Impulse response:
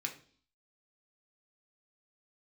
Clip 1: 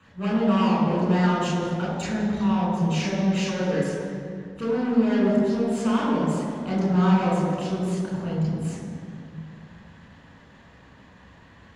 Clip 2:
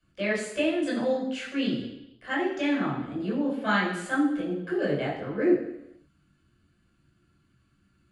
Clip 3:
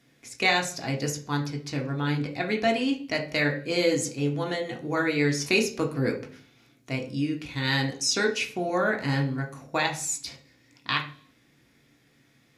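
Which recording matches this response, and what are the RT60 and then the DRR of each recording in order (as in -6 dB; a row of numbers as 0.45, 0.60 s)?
3; 2.4, 0.85, 0.45 s; -5.5, -7.0, 1.0 dB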